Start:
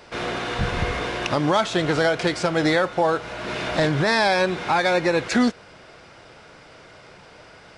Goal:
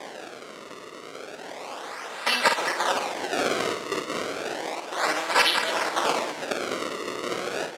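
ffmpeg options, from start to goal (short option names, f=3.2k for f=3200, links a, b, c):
-af "areverse,aecho=1:1:2.8:0.58,acompressor=threshold=-29dB:ratio=5,aexciter=amount=14.8:drive=6.7:freq=3.6k,acrusher=samples=31:mix=1:aa=0.000001:lfo=1:lforange=49.6:lforate=0.32,highpass=490,lowpass=7.9k,aecho=1:1:52.48|201.2:0.501|0.251,volume=-2dB"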